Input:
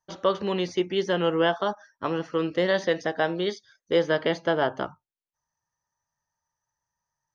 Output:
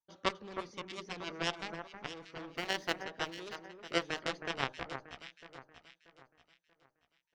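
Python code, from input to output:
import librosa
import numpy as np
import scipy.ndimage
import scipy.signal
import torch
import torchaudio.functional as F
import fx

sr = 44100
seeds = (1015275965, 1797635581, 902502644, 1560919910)

y = fx.law_mismatch(x, sr, coded='mu', at=(2.55, 3.02), fade=0.02)
y = fx.cheby_harmonics(y, sr, harmonics=(3, 5, 7), levels_db=(-7, -27, -38), full_scale_db=-10.0)
y = fx.echo_alternate(y, sr, ms=317, hz=1900.0, feedback_pct=60, wet_db=-7.0)
y = y * 10.0 ** (-2.5 / 20.0)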